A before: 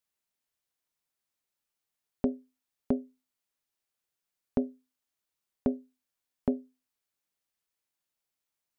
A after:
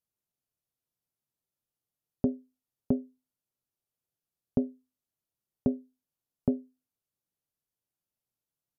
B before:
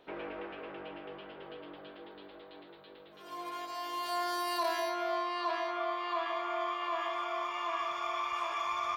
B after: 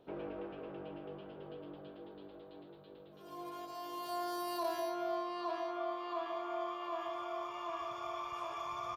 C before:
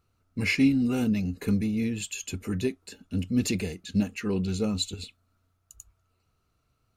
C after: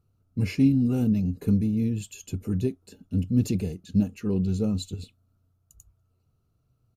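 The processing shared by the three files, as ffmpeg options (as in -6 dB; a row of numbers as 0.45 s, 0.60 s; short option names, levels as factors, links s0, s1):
-af "equalizer=f=125:t=o:w=1:g=8,equalizer=f=1000:t=o:w=1:g=-4,equalizer=f=2000:t=o:w=1:g=-12,equalizer=f=4000:t=o:w=1:g=-5,equalizer=f=8000:t=o:w=1:g=-6,aresample=32000,aresample=44100"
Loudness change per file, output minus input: +1.0 LU, -6.0 LU, +2.0 LU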